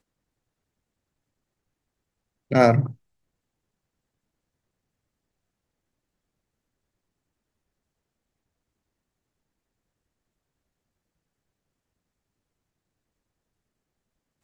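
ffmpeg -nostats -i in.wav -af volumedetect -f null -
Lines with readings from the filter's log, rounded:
mean_volume: -33.3 dB
max_volume: -3.8 dB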